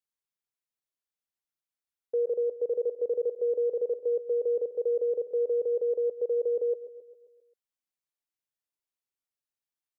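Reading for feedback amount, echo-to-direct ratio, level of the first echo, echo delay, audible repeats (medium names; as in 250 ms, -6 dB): 55%, -12.5 dB, -14.0 dB, 133 ms, 5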